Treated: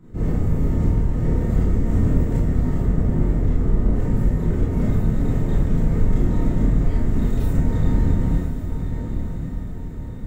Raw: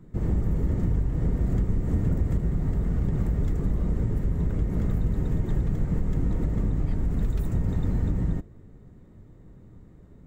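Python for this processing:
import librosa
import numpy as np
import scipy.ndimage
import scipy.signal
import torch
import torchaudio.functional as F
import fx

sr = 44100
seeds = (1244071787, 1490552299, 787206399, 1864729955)

p1 = fx.lowpass(x, sr, hz=1900.0, slope=6, at=(2.82, 3.93))
p2 = p1 + fx.echo_diffused(p1, sr, ms=1051, feedback_pct=53, wet_db=-7.5, dry=0)
y = fx.rev_schroeder(p2, sr, rt60_s=0.39, comb_ms=25, drr_db=-6.0)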